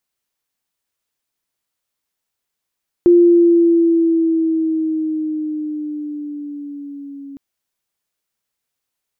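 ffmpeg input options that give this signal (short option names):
-f lavfi -i "aevalsrc='pow(10,(-5.5-25*t/4.31)/20)*sin(2*PI*349*4.31/(-4*log(2)/12)*(exp(-4*log(2)/12*t/4.31)-1))':d=4.31:s=44100"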